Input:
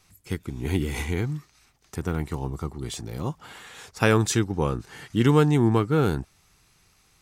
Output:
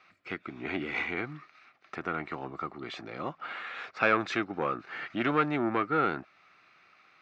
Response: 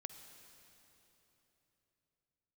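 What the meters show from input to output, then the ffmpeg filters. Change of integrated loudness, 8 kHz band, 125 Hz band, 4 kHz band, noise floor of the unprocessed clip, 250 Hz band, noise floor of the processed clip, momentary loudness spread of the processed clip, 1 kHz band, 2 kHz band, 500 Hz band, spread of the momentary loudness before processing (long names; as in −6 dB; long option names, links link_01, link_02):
−6.5 dB, −23.5 dB, −18.5 dB, −7.0 dB, −62 dBFS, −9.0 dB, −63 dBFS, 13 LU, +0.5 dB, +1.0 dB, −7.0 dB, 17 LU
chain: -filter_complex "[0:a]asplit=2[link_01][link_02];[link_02]acompressor=threshold=-34dB:ratio=6,volume=-3dB[link_03];[link_01][link_03]amix=inputs=2:normalize=0,asoftclip=type=tanh:threshold=-13dB,highpass=390,equalizer=frequency=440:width_type=q:width=4:gain=-7,equalizer=frequency=630:width_type=q:width=4:gain=3,equalizer=frequency=910:width_type=q:width=4:gain=-7,equalizer=frequency=1300:width_type=q:width=4:gain=7,equalizer=frequency=2300:width_type=q:width=4:gain=4,equalizer=frequency=3200:width_type=q:width=4:gain=-6,lowpass=frequency=3400:width=0.5412,lowpass=frequency=3400:width=1.3066"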